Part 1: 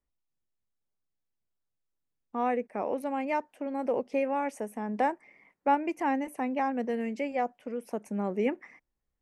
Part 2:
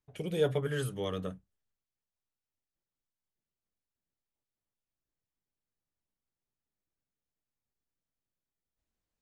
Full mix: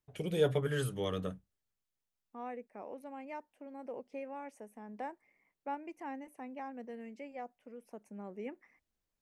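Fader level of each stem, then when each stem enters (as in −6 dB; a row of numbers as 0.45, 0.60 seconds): −14.5, −0.5 decibels; 0.00, 0.00 seconds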